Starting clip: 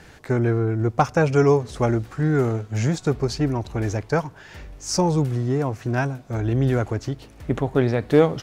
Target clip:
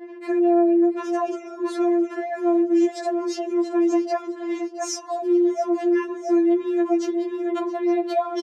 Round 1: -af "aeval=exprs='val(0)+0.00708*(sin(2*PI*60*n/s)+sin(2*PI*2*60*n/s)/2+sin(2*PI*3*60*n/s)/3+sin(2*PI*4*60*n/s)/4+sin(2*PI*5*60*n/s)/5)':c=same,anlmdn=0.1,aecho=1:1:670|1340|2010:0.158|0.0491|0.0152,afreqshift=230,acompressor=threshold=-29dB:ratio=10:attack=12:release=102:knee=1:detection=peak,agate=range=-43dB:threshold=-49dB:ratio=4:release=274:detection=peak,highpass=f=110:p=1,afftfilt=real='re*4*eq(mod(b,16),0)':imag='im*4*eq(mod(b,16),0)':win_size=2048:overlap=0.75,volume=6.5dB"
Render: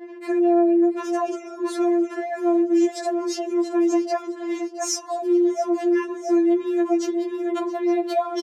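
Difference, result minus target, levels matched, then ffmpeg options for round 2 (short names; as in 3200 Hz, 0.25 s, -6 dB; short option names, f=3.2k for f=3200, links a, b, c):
8000 Hz band +4.5 dB
-af "aeval=exprs='val(0)+0.00708*(sin(2*PI*60*n/s)+sin(2*PI*2*60*n/s)/2+sin(2*PI*3*60*n/s)/3+sin(2*PI*4*60*n/s)/4+sin(2*PI*5*60*n/s)/5)':c=same,anlmdn=0.1,aecho=1:1:670|1340|2010:0.158|0.0491|0.0152,afreqshift=230,acompressor=threshold=-29dB:ratio=10:attack=12:release=102:knee=1:detection=peak,agate=range=-43dB:threshold=-49dB:ratio=4:release=274:detection=peak,highpass=f=110:p=1,highshelf=f=7.5k:g=-11,afftfilt=real='re*4*eq(mod(b,16),0)':imag='im*4*eq(mod(b,16),0)':win_size=2048:overlap=0.75,volume=6.5dB"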